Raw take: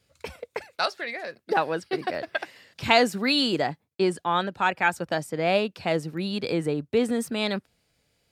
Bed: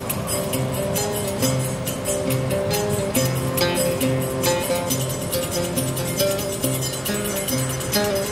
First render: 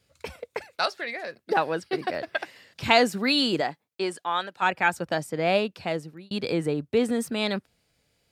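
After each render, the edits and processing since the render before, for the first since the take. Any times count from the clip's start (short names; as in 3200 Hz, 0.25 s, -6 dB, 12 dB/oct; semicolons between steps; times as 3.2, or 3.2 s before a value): 3.6–4.61 HPF 340 Hz -> 1200 Hz 6 dB/oct; 5.46–6.31 fade out equal-power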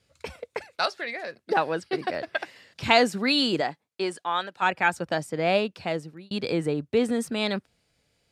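LPF 11000 Hz 12 dB/oct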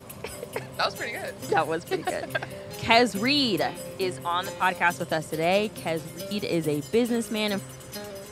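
add bed -17 dB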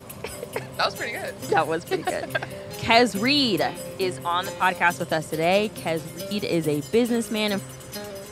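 gain +2.5 dB; limiter -3 dBFS, peak gain reduction 2.5 dB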